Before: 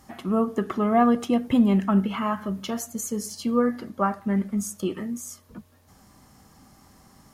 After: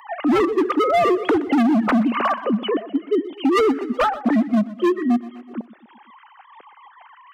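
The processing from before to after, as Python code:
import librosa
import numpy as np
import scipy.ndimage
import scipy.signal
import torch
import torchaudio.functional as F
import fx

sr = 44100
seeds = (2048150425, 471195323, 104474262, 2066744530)

y = fx.sine_speech(x, sr)
y = scipy.signal.sosfilt(scipy.signal.butter(2, 220.0, 'highpass', fs=sr, output='sos'), y)
y = fx.env_lowpass_down(y, sr, base_hz=1400.0, full_db=-19.5)
y = fx.low_shelf(y, sr, hz=450.0, db=5.0)
y = fx.rider(y, sr, range_db=3, speed_s=2.0)
y = np.clip(10.0 ** (22.0 / 20.0) * y, -1.0, 1.0) / 10.0 ** (22.0 / 20.0)
y = fx.echo_feedback(y, sr, ms=124, feedback_pct=53, wet_db=-18.5)
y = fx.wow_flutter(y, sr, seeds[0], rate_hz=2.1, depth_cents=27.0)
y = fx.band_squash(y, sr, depth_pct=40)
y = F.gain(torch.from_numpy(y), 8.0).numpy()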